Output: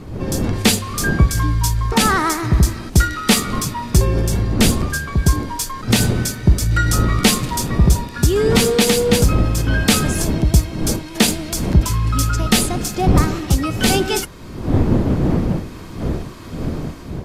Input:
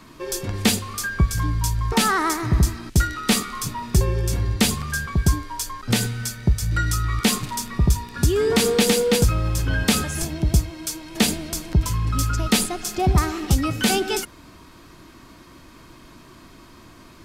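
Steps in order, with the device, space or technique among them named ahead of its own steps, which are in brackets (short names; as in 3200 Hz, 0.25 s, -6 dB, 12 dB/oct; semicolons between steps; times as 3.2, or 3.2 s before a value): smartphone video outdoors (wind noise -27 dBFS; AGC gain up to 8 dB; AAC 64 kbps 32000 Hz)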